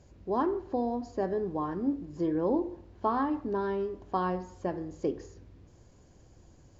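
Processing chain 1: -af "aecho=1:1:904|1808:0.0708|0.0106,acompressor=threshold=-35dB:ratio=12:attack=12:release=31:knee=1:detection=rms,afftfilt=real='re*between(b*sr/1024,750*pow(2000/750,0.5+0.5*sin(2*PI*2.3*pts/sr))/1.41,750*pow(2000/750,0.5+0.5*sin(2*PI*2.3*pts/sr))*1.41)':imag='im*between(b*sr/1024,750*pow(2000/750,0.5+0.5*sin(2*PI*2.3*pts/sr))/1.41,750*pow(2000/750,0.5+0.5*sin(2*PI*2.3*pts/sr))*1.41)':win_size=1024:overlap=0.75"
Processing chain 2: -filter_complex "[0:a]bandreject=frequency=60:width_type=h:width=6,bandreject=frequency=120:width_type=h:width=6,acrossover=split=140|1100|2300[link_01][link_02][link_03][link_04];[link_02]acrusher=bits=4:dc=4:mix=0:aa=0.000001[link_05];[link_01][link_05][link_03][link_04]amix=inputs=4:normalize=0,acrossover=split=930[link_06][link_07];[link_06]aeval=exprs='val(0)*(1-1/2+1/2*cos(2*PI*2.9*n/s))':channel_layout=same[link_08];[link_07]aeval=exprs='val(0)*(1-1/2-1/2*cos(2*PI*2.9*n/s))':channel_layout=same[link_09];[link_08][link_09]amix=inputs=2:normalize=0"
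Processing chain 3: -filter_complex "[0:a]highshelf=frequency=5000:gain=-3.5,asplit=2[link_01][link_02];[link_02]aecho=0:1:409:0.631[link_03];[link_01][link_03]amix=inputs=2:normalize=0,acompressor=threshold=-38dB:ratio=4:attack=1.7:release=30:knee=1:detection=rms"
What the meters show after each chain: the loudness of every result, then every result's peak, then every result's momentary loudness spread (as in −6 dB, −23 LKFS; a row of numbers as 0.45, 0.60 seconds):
−48.0, −41.5, −40.5 LKFS; −29.0, −21.0, −30.0 dBFS; 19, 9, 16 LU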